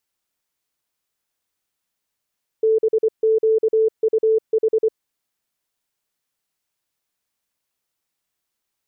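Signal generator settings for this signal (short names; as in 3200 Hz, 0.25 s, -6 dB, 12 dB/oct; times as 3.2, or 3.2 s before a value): Morse "BQUH" 24 wpm 441 Hz -13 dBFS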